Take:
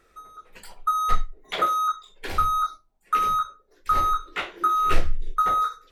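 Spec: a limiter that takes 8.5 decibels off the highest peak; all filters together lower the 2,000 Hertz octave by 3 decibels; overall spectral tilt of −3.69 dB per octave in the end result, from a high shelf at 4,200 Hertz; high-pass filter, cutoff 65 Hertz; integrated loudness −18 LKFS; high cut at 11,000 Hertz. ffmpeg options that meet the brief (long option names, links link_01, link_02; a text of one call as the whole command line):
ffmpeg -i in.wav -af "highpass=65,lowpass=11000,equalizer=frequency=2000:width_type=o:gain=-5.5,highshelf=frequency=4200:gain=7,volume=11dB,alimiter=limit=-10.5dB:level=0:latency=1" out.wav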